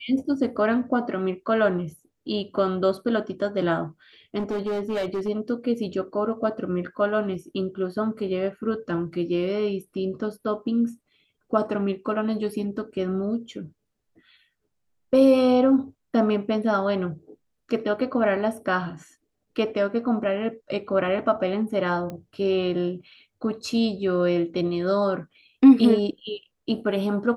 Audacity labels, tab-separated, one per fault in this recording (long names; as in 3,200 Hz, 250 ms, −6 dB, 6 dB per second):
4.380000	5.290000	clipping −23 dBFS
22.100000	22.100000	click −22 dBFS